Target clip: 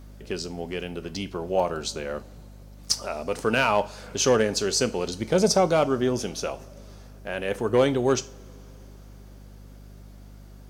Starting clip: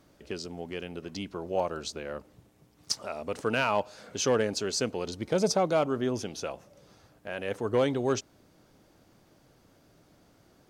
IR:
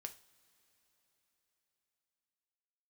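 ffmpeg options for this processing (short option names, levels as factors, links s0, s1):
-filter_complex "[0:a]aeval=exprs='val(0)+0.00355*(sin(2*PI*50*n/s)+sin(2*PI*2*50*n/s)/2+sin(2*PI*3*50*n/s)/3+sin(2*PI*4*50*n/s)/4+sin(2*PI*5*50*n/s)/5)':c=same,asplit=2[s0][s1];[1:a]atrim=start_sample=2205,highshelf=f=8000:g=9.5[s2];[s1][s2]afir=irnorm=-1:irlink=0,volume=2[s3];[s0][s3]amix=inputs=2:normalize=0,volume=0.841"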